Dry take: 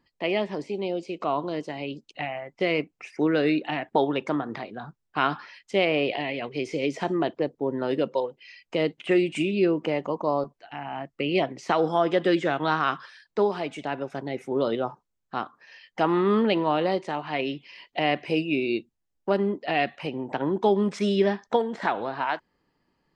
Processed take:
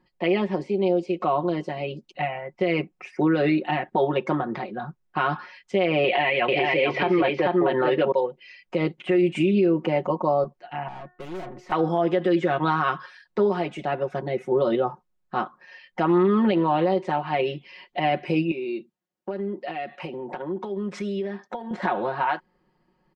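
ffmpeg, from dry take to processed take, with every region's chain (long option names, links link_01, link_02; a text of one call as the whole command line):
ffmpeg -i in.wav -filter_complex "[0:a]asettb=1/sr,asplit=3[link_01][link_02][link_03];[link_01]atrim=end=6.044[link_04];[link_02]atrim=start=6.04:end=8.12,asetpts=PTS-STARTPTS,afade=type=in:duration=0.004:curve=qsin,afade=type=out:start_time=2.076:duration=0.004:curve=qsin,lowpass=frequency=4200:width=0.5412,lowpass=frequency=4200:width=1.3066,equalizer=frequency=1900:width=0.33:gain=13,aecho=1:1:440:0.708,atrim=end_sample=91728[link_05];[link_03]atrim=start=8.116[link_06];[link_04][link_05]acrossfade=duration=0.004:curve1=hsin:curve2=qsin[link_07];[link_07][link_06]acrossfade=duration=0.004:curve1=qsin:curve2=hsin,asettb=1/sr,asplit=3[link_08][link_09][link_10];[link_08]atrim=end=10.884[link_11];[link_09]atrim=start=10.88:end=11.72,asetpts=PTS-STARTPTS,afade=type=in:duration=0.004:curve=qsin,afade=type=out:start_time=0.836:duration=0.004:curve=qsin,highshelf=frequency=2000:gain=-7.5,bandreject=frequency=362:width_type=h:width=4,bandreject=frequency=724:width_type=h:width=4,bandreject=frequency=1086:width_type=h:width=4,bandreject=frequency=1448:width_type=h:width=4,bandreject=frequency=1810:width_type=h:width=4,aeval=exprs='(tanh(89.1*val(0)+0.45)-tanh(0.45))/89.1':channel_layout=same[link_12];[link_10]atrim=start=11.716[link_13];[link_11][link_12]acrossfade=duration=0.004:curve1=hsin:curve2=qsin[link_14];[link_14][link_13]acrossfade=duration=0.004:curve1=qsin:curve2=hsin,asettb=1/sr,asplit=3[link_15][link_16][link_17];[link_15]atrim=end=18.514[link_18];[link_16]atrim=start=18.51:end=21.71,asetpts=PTS-STARTPTS,afade=type=in:duration=0.004:curve=qsin,afade=type=out:start_time=3.196:duration=0.004:curve=qsin,highpass=180,acompressor=threshold=-33dB:ratio=5:attack=3.2:release=140:knee=1:detection=peak[link_19];[link_17]atrim=start=21.706[link_20];[link_18][link_19]acrossfade=duration=0.004:curve1=hsin:curve2=qsin[link_21];[link_21][link_20]acrossfade=duration=0.004:curve1=qsin:curve2=hsin,highshelf=frequency=3200:gain=-11.5,aecho=1:1:5.5:0.82,alimiter=limit=-15.5dB:level=0:latency=1:release=89,volume=3dB" out.wav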